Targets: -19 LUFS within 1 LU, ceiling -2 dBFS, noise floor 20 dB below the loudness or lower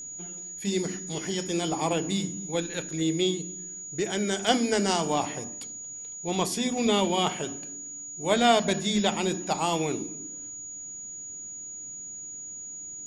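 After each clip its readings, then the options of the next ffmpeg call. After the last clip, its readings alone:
steady tone 6800 Hz; tone level -37 dBFS; loudness -28.5 LUFS; peak -6.0 dBFS; loudness target -19.0 LUFS
-> -af "bandreject=f=6.8k:w=30"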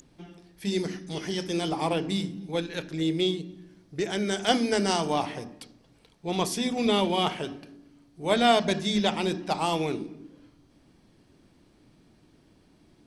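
steady tone none; loudness -27.5 LUFS; peak -6.0 dBFS; loudness target -19.0 LUFS
-> -af "volume=8.5dB,alimiter=limit=-2dB:level=0:latency=1"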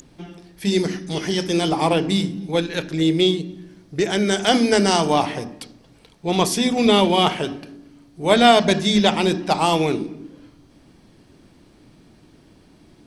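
loudness -19.0 LUFS; peak -2.0 dBFS; noise floor -53 dBFS

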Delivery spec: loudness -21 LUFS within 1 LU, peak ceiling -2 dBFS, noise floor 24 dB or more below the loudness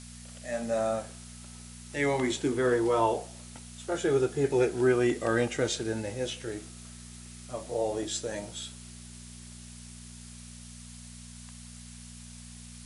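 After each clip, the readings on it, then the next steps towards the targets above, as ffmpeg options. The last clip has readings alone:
hum 60 Hz; harmonics up to 240 Hz; hum level -45 dBFS; noise floor -47 dBFS; noise floor target -54 dBFS; loudness -29.5 LUFS; peak -12.5 dBFS; loudness target -21.0 LUFS
-> -af "bandreject=f=60:t=h:w=4,bandreject=f=120:t=h:w=4,bandreject=f=180:t=h:w=4,bandreject=f=240:t=h:w=4"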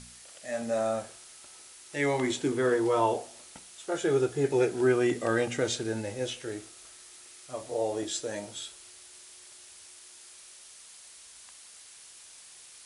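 hum none; noise floor -51 dBFS; noise floor target -54 dBFS
-> -af "afftdn=nr=6:nf=-51"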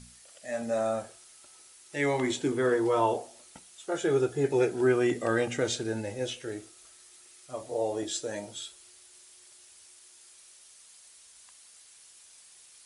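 noise floor -55 dBFS; loudness -29.5 LUFS; peak -13.0 dBFS; loudness target -21.0 LUFS
-> -af "volume=8.5dB"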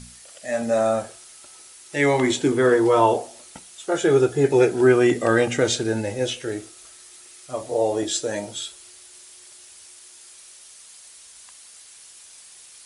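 loudness -21.0 LUFS; peak -4.5 dBFS; noise floor -47 dBFS

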